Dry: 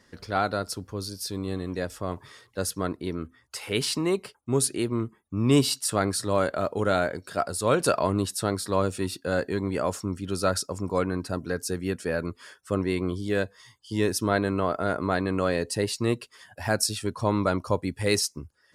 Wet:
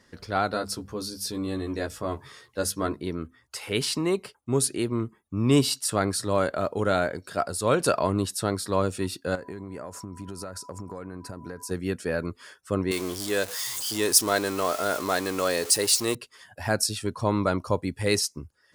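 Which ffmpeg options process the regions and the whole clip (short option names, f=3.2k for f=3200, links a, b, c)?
-filter_complex "[0:a]asettb=1/sr,asplit=3[a][b][c];[a]atrim=end=0.514[d];[b]atrim=start=0.51:end=3.03,asetpts=PTS-STARTPTS,afade=t=in:d=0.004:c=qsin,afade=t=out:st=2.516:d=0.004:c=qsin,bandreject=f=50:t=h:w=6,bandreject=f=100:t=h:w=6,bandreject=f=150:t=h:w=6,bandreject=f=200:t=h:w=6,bandreject=f=250:t=h:w=6,asplit=2[e][f];[f]adelay=14,volume=-3.5dB[g];[e][g]amix=inputs=2:normalize=0,atrim=end_sample=111132[h];[c]atrim=start=3.026[i];[d][h]acrossfade=d=0.004:c1=hsin:c2=qsin[j];[j][i]acrossfade=d=0.004:c1=qsin:c2=hsin,asettb=1/sr,asplit=3[k][l][m];[k]atrim=end=9.354[n];[l]atrim=start=9.35:end=11.71,asetpts=PTS-STARTPTS,afade=t=in:d=0.004:c=qsin,afade=t=out:st=2.356:d=0.004:c=qsin,equalizer=f=3.3k:t=o:w=0.77:g=-10,aeval=exprs='val(0)+0.00501*sin(2*PI*990*n/s)':c=same,acompressor=threshold=-32dB:ratio=16:attack=3.2:release=140:knee=1:detection=peak[o];[m]atrim=start=11.706[p];[n][o]acrossfade=d=0.004:c1=hsin:c2=qsin[q];[q][p]acrossfade=d=0.004:c1=qsin:c2=hsin,asettb=1/sr,asplit=3[r][s][t];[r]atrim=end=12.914[u];[s]atrim=start=12.91:end=16.15,asetpts=PTS-STARTPTS,afade=t=in:d=0.004:c=qsin,afade=t=out:st=3.236:d=0.004:c=qsin,aeval=exprs='val(0)+0.5*0.02*sgn(val(0))':c=same,bass=f=250:g=-12,treble=f=4k:g=12[v];[t]atrim=start=16.146[w];[u][v]acrossfade=d=0.004:c1=hsin:c2=qsin[x];[x][w]acrossfade=d=0.004:c1=qsin:c2=hsin"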